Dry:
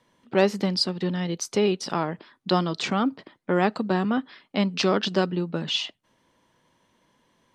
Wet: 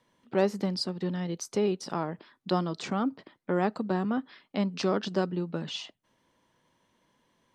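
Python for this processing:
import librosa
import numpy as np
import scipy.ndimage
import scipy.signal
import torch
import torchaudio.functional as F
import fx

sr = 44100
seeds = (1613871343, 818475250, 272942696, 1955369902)

y = fx.dynamic_eq(x, sr, hz=3000.0, q=0.79, threshold_db=-42.0, ratio=4.0, max_db=-7)
y = y * librosa.db_to_amplitude(-4.5)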